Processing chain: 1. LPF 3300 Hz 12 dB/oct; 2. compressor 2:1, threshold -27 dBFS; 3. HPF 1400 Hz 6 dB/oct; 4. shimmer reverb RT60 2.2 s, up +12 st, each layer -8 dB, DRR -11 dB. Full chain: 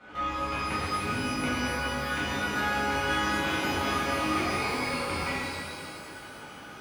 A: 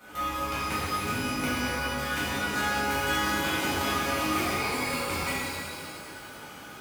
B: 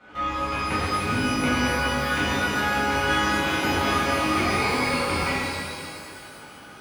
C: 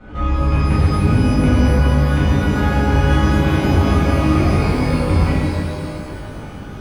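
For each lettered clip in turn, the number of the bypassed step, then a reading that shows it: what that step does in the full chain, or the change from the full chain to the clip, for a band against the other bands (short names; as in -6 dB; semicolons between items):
1, 8 kHz band +4.5 dB; 2, mean gain reduction 4.5 dB; 3, 125 Hz band +19.5 dB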